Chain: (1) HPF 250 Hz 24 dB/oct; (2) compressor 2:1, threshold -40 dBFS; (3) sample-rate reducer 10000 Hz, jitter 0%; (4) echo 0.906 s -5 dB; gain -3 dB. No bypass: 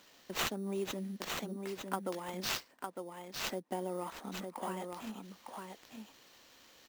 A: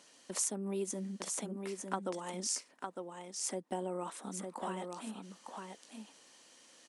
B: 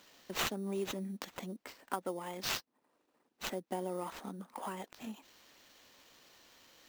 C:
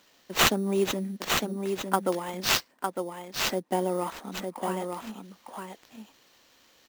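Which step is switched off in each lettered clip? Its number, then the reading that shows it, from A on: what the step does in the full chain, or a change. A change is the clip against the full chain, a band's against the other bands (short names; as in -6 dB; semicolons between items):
3, crest factor change +1.5 dB; 4, momentary loudness spread change +8 LU; 2, mean gain reduction 7.5 dB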